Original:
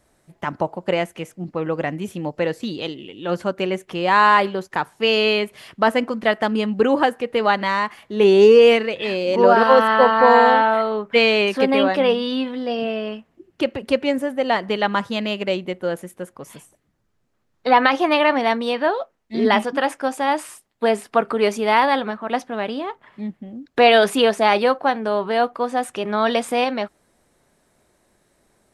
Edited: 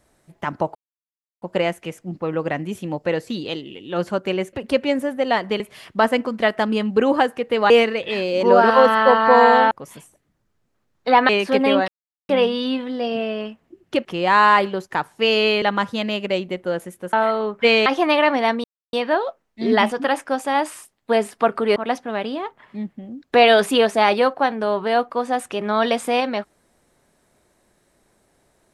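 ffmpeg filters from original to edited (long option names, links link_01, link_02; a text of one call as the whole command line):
ffmpeg -i in.wav -filter_complex "[0:a]asplit=14[link_01][link_02][link_03][link_04][link_05][link_06][link_07][link_08][link_09][link_10][link_11][link_12][link_13][link_14];[link_01]atrim=end=0.75,asetpts=PTS-STARTPTS,afade=type=out:start_time=0.746:duration=0.004:curve=hsin,apad=pad_dur=0.67[link_15];[link_02]atrim=start=0.75:end=3.862,asetpts=PTS-STARTPTS,afade=type=in:duration=0.004:curve=hsin[link_16];[link_03]atrim=start=13.718:end=14.792[link_17];[link_04]atrim=start=5.428:end=7.532[link_18];[link_05]atrim=start=8.628:end=10.642[link_19];[link_06]atrim=start=16.298:end=17.882[link_20];[link_07]atrim=start=11.368:end=11.96,asetpts=PTS-STARTPTS,afade=type=out:start_time=0.588:duration=0.004:curve=hsin,apad=pad_dur=0.41[link_21];[link_08]atrim=start=11.96:end=13.722,asetpts=PTS-STARTPTS,afade=type=in:duration=0.004:curve=hsin[link_22];[link_09]atrim=start=3.858:end=5.432[link_23];[link_10]atrim=start=14.788:end=16.302[link_24];[link_11]atrim=start=10.638:end=11.372[link_25];[link_12]atrim=start=17.878:end=18.66,asetpts=PTS-STARTPTS,afade=type=out:start_time=0.778:duration=0.004:curve=hsin,apad=pad_dur=0.29[link_26];[link_13]atrim=start=18.66:end=21.492,asetpts=PTS-STARTPTS,afade=type=in:duration=0.004:curve=hsin[link_27];[link_14]atrim=start=22.198[link_28];[link_15][link_16]concat=n=2:v=0:a=1[link_29];[link_29][link_17]acrossfade=duration=0.004:curve1=hsin:curve2=hsin[link_30];[link_30][link_18]acrossfade=duration=0.004:curve1=hsin:curve2=hsin[link_31];[link_31][link_19]acrossfade=duration=0.004:curve1=hsin:curve2=hsin[link_32];[link_32][link_20]acrossfade=duration=0.004:curve1=hsin:curve2=hsin[link_33];[link_21][link_22]concat=n=2:v=0:a=1[link_34];[link_33][link_34]acrossfade=duration=0.004:curve1=hsin:curve2=hsin[link_35];[link_35][link_23]acrossfade=duration=0.004:curve1=hsin:curve2=hsin[link_36];[link_36][link_24]acrossfade=duration=0.004:curve1=hsin:curve2=hsin[link_37];[link_37][link_25]acrossfade=duration=0.004:curve1=hsin:curve2=hsin[link_38];[link_26][link_27]concat=n=2:v=0:a=1[link_39];[link_38][link_39]acrossfade=duration=0.004:curve1=hsin:curve2=hsin[link_40];[link_40][link_28]acrossfade=duration=0.004:curve1=hsin:curve2=hsin" out.wav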